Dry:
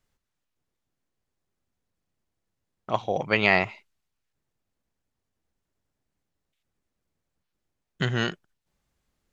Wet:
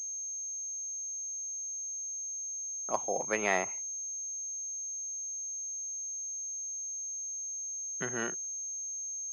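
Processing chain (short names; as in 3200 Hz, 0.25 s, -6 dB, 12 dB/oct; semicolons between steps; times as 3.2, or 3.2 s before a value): three-band isolator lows -20 dB, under 220 Hz, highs -13 dB, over 2400 Hz; pulse-width modulation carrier 6400 Hz; gain -6 dB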